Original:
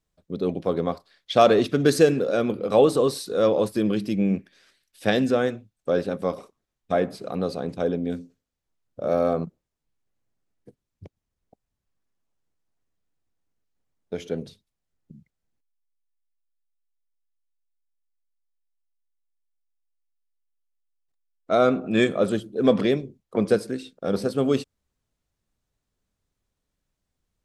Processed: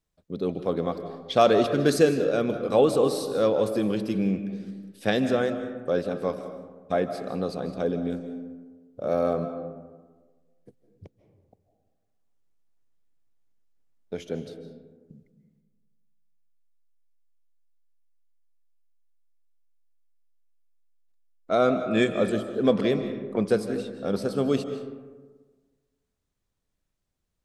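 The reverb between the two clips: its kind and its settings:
comb and all-pass reverb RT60 1.4 s, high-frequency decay 0.4×, pre-delay 115 ms, DRR 9 dB
level −2.5 dB

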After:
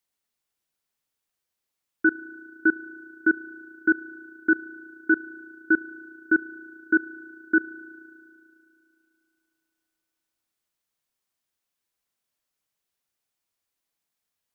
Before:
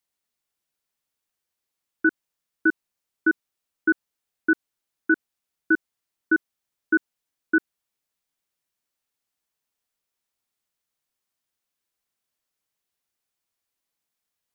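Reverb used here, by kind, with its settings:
spring reverb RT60 2.7 s, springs 34 ms, chirp 25 ms, DRR 16 dB

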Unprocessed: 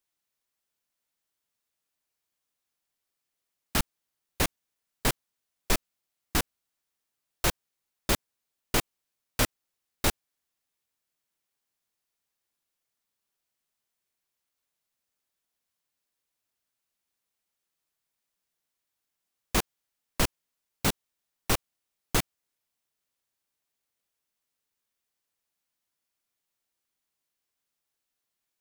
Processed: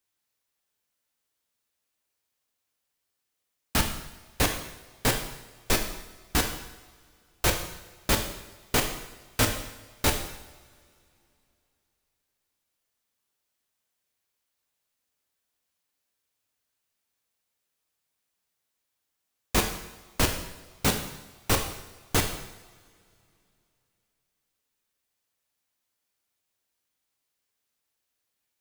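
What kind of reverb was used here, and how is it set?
coupled-rooms reverb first 0.87 s, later 3 s, from −21 dB, DRR 3 dB
level +1.5 dB

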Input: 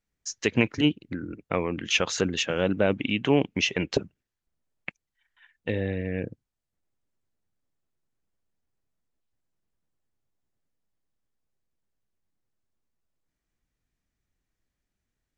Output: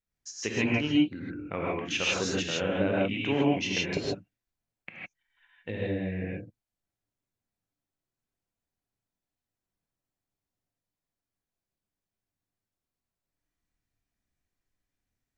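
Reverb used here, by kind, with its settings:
reverb whose tail is shaped and stops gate 180 ms rising, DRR −5 dB
level −8.5 dB

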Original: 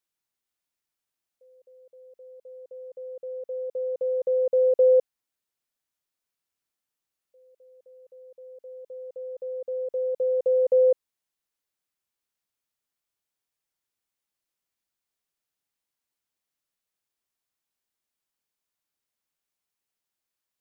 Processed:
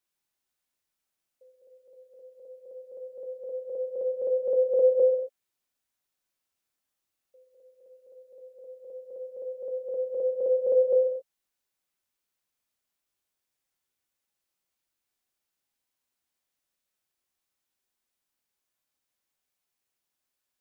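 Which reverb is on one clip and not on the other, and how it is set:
reverb whose tail is shaped and stops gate 300 ms falling, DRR 1.5 dB

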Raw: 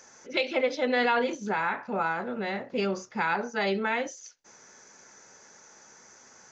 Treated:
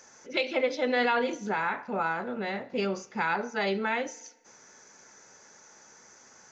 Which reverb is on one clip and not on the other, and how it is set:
feedback delay network reverb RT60 1.1 s, low-frequency decay 0.9×, high-frequency decay 1×, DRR 18.5 dB
level −1 dB

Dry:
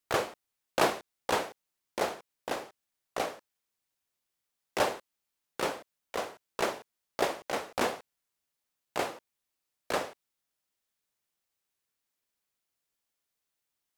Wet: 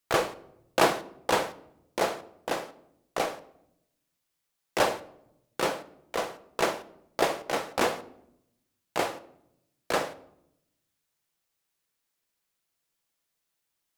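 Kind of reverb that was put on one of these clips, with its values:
rectangular room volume 2,200 cubic metres, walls furnished, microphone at 0.7 metres
level +3.5 dB

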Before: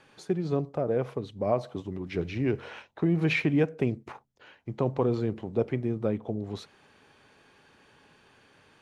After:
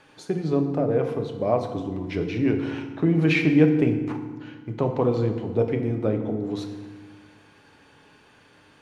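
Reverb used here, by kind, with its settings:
feedback delay network reverb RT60 1.4 s, low-frequency decay 1.45×, high-frequency decay 0.7×, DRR 4.5 dB
level +3 dB

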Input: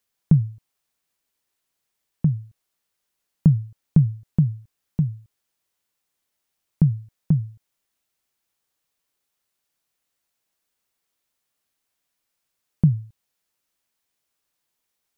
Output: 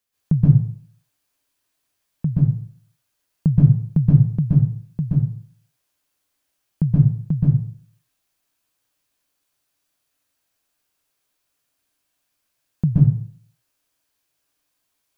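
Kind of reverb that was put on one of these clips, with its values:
dense smooth reverb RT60 0.51 s, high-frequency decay 0.9×, pre-delay 115 ms, DRR −6.5 dB
level −3 dB

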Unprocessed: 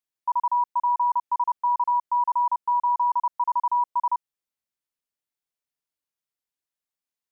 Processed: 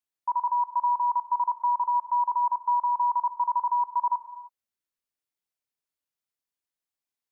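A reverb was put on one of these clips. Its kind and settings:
reverb whose tail is shaped and stops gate 340 ms flat, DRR 10.5 dB
level −2 dB

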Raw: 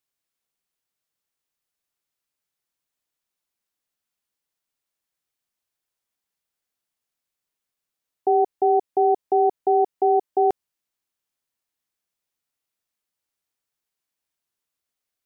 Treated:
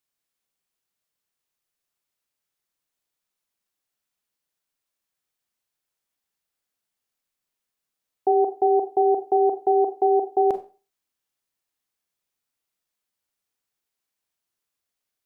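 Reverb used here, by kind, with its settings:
four-comb reverb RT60 0.34 s, combs from 30 ms, DRR 8 dB

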